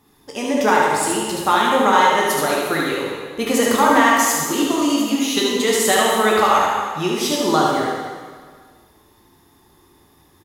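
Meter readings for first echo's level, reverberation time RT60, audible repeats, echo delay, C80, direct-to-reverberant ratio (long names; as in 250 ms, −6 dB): −3.5 dB, 1.6 s, 1, 74 ms, 1.5 dB, −4.0 dB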